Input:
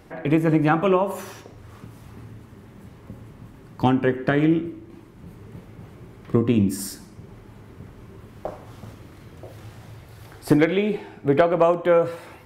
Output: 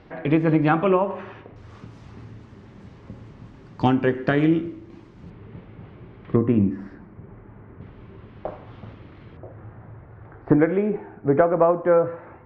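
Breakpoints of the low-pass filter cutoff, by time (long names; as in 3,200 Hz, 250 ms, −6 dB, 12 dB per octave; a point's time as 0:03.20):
low-pass filter 24 dB per octave
4,400 Hz
from 0:00.84 2,700 Hz
from 0:01.56 6,200 Hz
from 0:05.30 3,400 Hz
from 0:06.36 2,000 Hz
from 0:07.81 3,500 Hz
from 0:09.37 1,700 Hz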